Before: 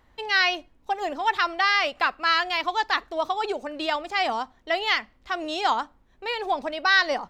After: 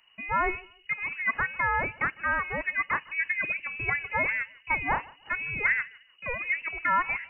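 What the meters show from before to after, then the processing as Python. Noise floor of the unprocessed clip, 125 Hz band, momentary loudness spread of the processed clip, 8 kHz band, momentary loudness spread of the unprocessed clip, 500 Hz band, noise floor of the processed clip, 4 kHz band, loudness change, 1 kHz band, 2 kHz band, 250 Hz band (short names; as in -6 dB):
-61 dBFS, n/a, 7 LU, under -35 dB, 10 LU, -9.5 dB, -60 dBFS, -24.5 dB, -3.5 dB, -6.0 dB, -2.0 dB, -7.0 dB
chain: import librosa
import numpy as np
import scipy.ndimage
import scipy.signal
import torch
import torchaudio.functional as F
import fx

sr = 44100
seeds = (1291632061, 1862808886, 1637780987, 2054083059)

y = fx.rider(x, sr, range_db=3, speed_s=2.0)
y = fx.echo_feedback(y, sr, ms=153, feedback_pct=23, wet_db=-23)
y = fx.freq_invert(y, sr, carrier_hz=2900)
y = y * 10.0 ** (-4.0 / 20.0)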